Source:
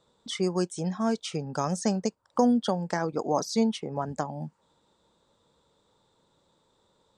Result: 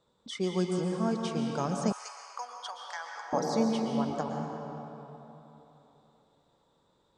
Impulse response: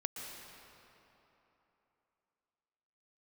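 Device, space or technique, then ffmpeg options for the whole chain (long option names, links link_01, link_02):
swimming-pool hall: -filter_complex "[1:a]atrim=start_sample=2205[link_01];[0:a][link_01]afir=irnorm=-1:irlink=0,highshelf=frequency=5200:gain=-5.5,asettb=1/sr,asplit=3[link_02][link_03][link_04];[link_02]atrim=end=1.924[link_05];[link_03]atrim=start=1.92:end=3.33,asetpts=PTS-STARTPTS,afade=type=in:duration=0.004:curve=qsin,afade=type=out:start_time=1.406:duration=0.004:curve=qsin,highpass=frequency=1000:width=0.5412,highpass=frequency=1000:width=1.3066[link_06];[link_04]atrim=start=3.326[link_07];[link_05][link_06]acrossfade=duration=0.004:curve1=hsin:curve2=qsin[link_08];[link_08][link_07]acrossfade=duration=0.004:curve1=qsin:curve2=hsin,volume=-2dB"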